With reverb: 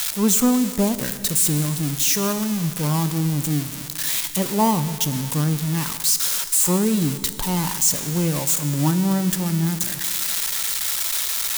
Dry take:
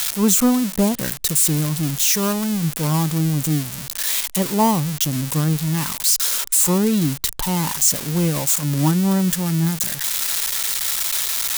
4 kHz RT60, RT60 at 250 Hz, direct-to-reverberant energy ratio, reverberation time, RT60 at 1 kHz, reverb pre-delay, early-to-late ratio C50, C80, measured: 2.3 s, 2.3 s, 10.5 dB, 2.3 s, 2.3 s, 16 ms, 11.5 dB, 12.5 dB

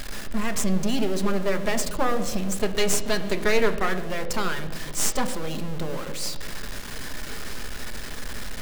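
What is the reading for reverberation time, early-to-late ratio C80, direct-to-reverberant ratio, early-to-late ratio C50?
1.6 s, 13.0 dB, 7.0 dB, 11.5 dB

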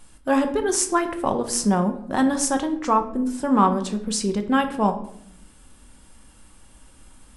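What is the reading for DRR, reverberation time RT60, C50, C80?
5.5 dB, 0.70 s, 11.5 dB, 14.5 dB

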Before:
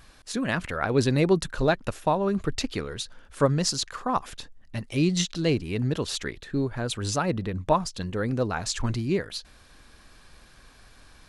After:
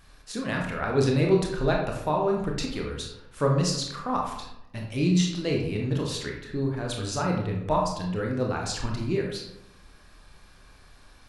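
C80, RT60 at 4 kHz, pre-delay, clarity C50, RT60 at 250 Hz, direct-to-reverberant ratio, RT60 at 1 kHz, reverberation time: 7.0 dB, 0.45 s, 23 ms, 4.0 dB, 1.0 s, -0.5 dB, 0.85 s, 0.85 s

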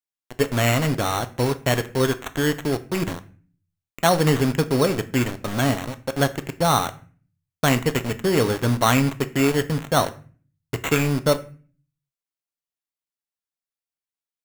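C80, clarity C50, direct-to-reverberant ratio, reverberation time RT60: 21.0 dB, 17.0 dB, 10.0 dB, 0.40 s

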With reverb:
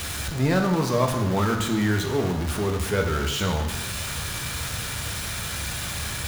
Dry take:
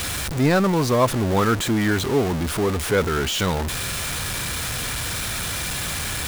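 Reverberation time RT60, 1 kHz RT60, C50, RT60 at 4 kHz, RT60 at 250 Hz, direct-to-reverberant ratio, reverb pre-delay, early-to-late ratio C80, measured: 1.0 s, 1.1 s, 7.0 dB, 1.1 s, 0.95 s, 3.0 dB, 3 ms, 8.5 dB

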